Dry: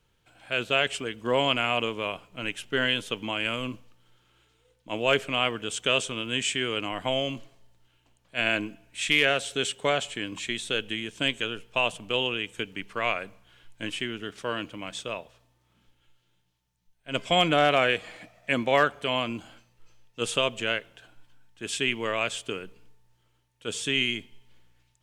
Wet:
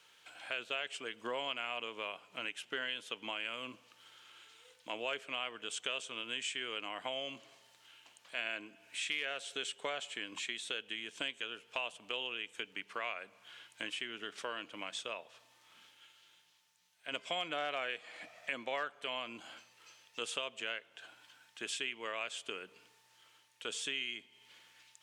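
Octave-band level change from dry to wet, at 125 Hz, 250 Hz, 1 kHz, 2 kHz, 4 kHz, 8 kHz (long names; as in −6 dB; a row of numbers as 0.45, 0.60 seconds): −26.5, −18.0, −13.0, −11.5, −11.0, −9.5 decibels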